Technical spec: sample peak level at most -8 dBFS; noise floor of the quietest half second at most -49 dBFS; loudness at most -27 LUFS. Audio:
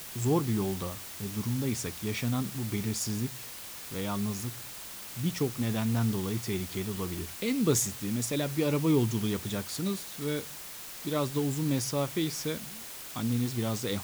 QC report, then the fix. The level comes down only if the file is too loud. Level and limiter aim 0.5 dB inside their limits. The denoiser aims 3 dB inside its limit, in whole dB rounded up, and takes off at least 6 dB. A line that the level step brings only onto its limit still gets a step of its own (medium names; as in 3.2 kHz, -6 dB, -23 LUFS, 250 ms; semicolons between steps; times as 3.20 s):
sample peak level -14.0 dBFS: pass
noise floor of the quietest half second -43 dBFS: fail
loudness -31.5 LUFS: pass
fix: noise reduction 9 dB, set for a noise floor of -43 dBFS